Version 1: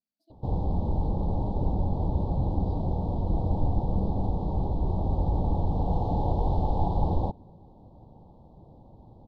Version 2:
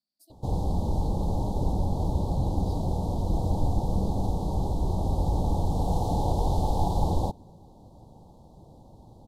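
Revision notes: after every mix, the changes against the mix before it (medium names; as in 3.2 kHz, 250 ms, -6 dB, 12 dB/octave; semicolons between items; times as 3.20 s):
master: remove distance through air 350 m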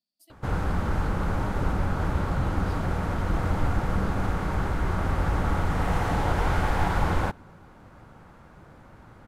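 master: remove elliptic band-stop 860–3800 Hz, stop band 50 dB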